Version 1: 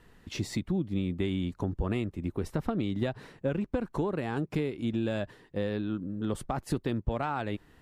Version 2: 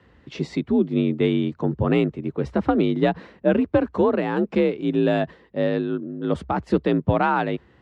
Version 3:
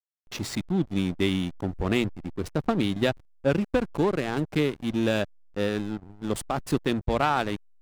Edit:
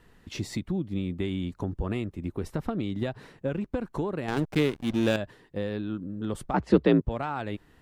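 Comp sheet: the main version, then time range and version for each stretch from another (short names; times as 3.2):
1
4.28–5.16 from 3
6.54–7.01 from 2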